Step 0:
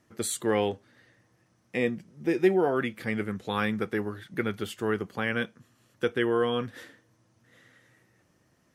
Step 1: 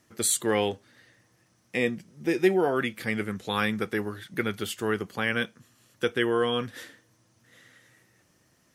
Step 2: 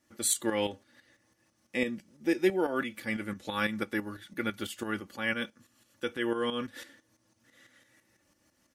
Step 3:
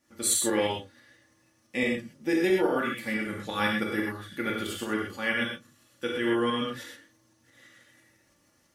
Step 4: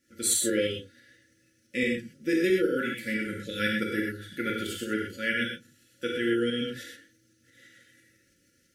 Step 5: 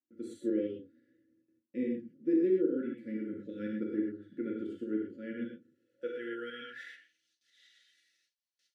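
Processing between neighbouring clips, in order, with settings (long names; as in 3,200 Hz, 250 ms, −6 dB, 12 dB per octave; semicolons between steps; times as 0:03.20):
high-shelf EQ 2,500 Hz +8 dB
comb filter 3.5 ms, depth 60%; shaped tremolo saw up 6 Hz, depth 65%; level −2.5 dB
reverb whose tail is shaped and stops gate 150 ms flat, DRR −2 dB
brick-wall band-stop 560–1,300 Hz
noise gate with hold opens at −55 dBFS; band-pass filter sweep 300 Hz → 3,900 Hz, 0:05.57–0:07.37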